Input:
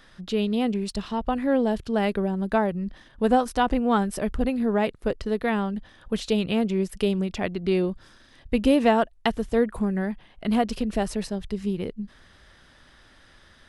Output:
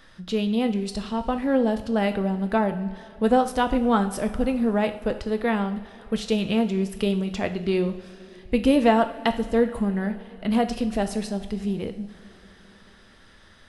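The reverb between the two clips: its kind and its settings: two-slope reverb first 0.52 s, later 4.2 s, from -18 dB, DRR 7 dB

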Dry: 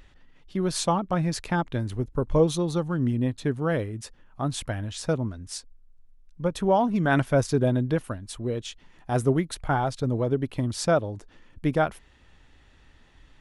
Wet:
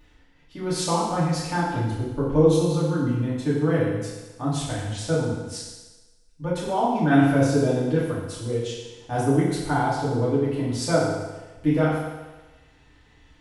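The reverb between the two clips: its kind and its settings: FDN reverb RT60 1.2 s, low-frequency decay 0.85×, high-frequency decay 0.95×, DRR -9.5 dB; trim -8 dB

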